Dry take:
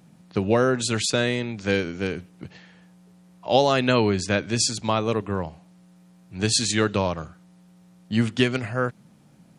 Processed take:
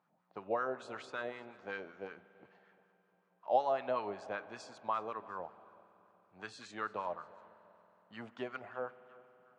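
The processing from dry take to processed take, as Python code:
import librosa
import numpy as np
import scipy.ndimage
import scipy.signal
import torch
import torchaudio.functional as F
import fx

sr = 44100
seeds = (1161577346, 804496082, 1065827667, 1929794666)

y = fx.echo_feedback(x, sr, ms=345, feedback_pct=36, wet_db=-22.5)
y = fx.wah_lfo(y, sr, hz=5.3, low_hz=650.0, high_hz=1300.0, q=3.0)
y = fx.rev_spring(y, sr, rt60_s=3.8, pass_ms=(46,), chirp_ms=65, drr_db=16.5)
y = y * librosa.db_to_amplitude(-6.5)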